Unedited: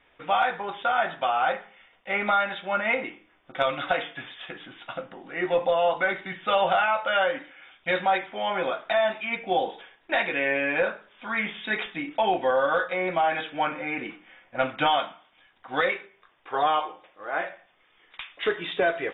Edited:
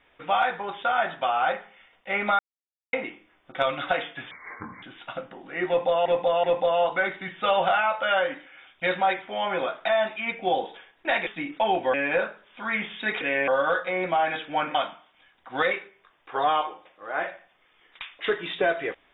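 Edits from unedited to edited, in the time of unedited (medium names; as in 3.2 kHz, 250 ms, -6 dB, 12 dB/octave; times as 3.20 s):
2.39–2.93 s: mute
4.31–4.63 s: speed 62%
5.48–5.86 s: loop, 3 plays
10.31–10.58 s: swap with 11.85–12.52 s
13.79–14.93 s: delete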